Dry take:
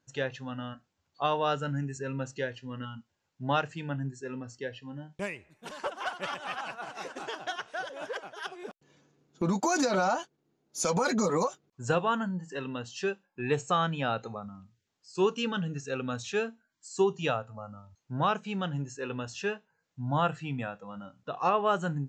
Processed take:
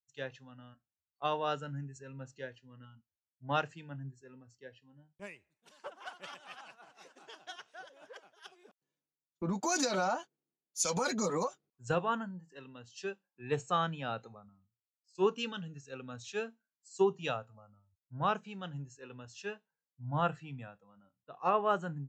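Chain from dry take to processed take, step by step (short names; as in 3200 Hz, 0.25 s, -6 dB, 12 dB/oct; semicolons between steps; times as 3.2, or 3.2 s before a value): three-band expander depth 100%; gain -8 dB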